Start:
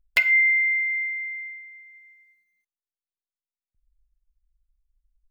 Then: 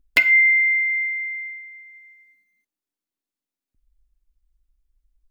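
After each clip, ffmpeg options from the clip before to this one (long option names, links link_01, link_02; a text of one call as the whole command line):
ffmpeg -i in.wav -af "equalizer=frequency=280:width=1.7:gain=15,volume=3.5dB" out.wav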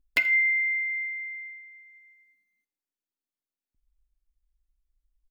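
ffmpeg -i in.wav -af "aecho=1:1:81|162|243:0.0794|0.0334|0.014,volume=-7.5dB" out.wav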